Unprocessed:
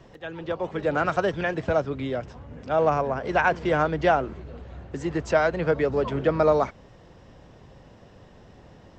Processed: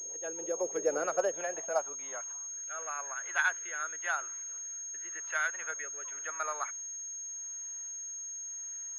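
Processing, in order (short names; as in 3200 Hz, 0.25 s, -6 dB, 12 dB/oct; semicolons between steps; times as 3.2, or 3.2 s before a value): rotary speaker horn 6.3 Hz, later 0.9 Hz, at 1.32; high-pass sweep 440 Hz -> 1500 Hz, 0.95–2.66; pulse-width modulation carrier 6500 Hz; gain -8 dB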